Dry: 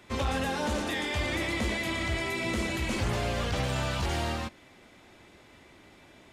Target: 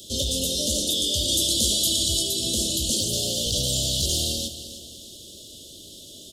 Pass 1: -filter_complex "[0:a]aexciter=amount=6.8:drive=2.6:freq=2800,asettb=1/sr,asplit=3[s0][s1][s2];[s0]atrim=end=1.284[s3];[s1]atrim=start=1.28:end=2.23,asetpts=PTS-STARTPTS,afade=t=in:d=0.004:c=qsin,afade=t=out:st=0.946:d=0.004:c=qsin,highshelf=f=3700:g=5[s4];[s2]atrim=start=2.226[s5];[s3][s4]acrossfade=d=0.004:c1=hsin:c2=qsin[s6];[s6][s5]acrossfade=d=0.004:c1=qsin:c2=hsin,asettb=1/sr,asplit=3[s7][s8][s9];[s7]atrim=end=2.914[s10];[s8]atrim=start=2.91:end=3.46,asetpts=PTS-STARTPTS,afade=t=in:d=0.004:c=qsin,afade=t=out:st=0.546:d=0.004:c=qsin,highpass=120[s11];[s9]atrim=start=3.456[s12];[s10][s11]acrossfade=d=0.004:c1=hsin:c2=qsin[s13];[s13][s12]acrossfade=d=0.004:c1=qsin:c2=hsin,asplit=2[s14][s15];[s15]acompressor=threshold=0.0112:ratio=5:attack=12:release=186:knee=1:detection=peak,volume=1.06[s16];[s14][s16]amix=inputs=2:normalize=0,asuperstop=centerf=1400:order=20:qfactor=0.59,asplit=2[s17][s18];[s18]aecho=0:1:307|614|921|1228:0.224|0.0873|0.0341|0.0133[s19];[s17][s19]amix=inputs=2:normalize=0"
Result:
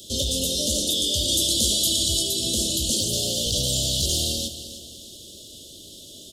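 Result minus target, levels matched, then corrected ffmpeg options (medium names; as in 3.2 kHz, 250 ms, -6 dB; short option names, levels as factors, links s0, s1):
compression: peak gain reduction -5.5 dB
-filter_complex "[0:a]aexciter=amount=6.8:drive=2.6:freq=2800,asettb=1/sr,asplit=3[s0][s1][s2];[s0]atrim=end=1.284[s3];[s1]atrim=start=1.28:end=2.23,asetpts=PTS-STARTPTS,afade=t=in:d=0.004:c=qsin,afade=t=out:st=0.946:d=0.004:c=qsin,highshelf=f=3700:g=5[s4];[s2]atrim=start=2.226[s5];[s3][s4]acrossfade=d=0.004:c1=hsin:c2=qsin[s6];[s6][s5]acrossfade=d=0.004:c1=qsin:c2=hsin,asettb=1/sr,asplit=3[s7][s8][s9];[s7]atrim=end=2.914[s10];[s8]atrim=start=2.91:end=3.46,asetpts=PTS-STARTPTS,afade=t=in:d=0.004:c=qsin,afade=t=out:st=0.546:d=0.004:c=qsin,highpass=120[s11];[s9]atrim=start=3.456[s12];[s10][s11]acrossfade=d=0.004:c1=hsin:c2=qsin[s13];[s13][s12]acrossfade=d=0.004:c1=qsin:c2=hsin,asplit=2[s14][s15];[s15]acompressor=threshold=0.00501:ratio=5:attack=12:release=186:knee=1:detection=peak,volume=1.06[s16];[s14][s16]amix=inputs=2:normalize=0,asuperstop=centerf=1400:order=20:qfactor=0.59,asplit=2[s17][s18];[s18]aecho=0:1:307|614|921|1228:0.224|0.0873|0.0341|0.0133[s19];[s17][s19]amix=inputs=2:normalize=0"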